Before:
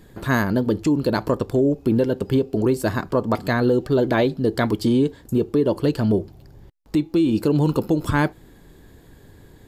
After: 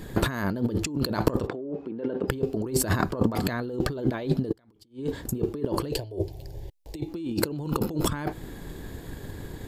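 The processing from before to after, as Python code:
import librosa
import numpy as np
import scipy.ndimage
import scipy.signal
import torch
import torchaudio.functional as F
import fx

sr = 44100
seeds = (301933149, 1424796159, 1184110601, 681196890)

y = fx.over_compress(x, sr, threshold_db=-29.0, ratio=-1.0)
y = fx.transient(y, sr, attack_db=4, sustain_db=-1)
y = fx.bandpass_edges(y, sr, low_hz=240.0, high_hz=2300.0, at=(1.46, 2.27), fade=0.02)
y = fx.gate_flip(y, sr, shuts_db=-22.0, range_db=-32, at=(4.51, 4.98), fade=0.02)
y = fx.fixed_phaser(y, sr, hz=530.0, stages=4, at=(5.92, 7.08))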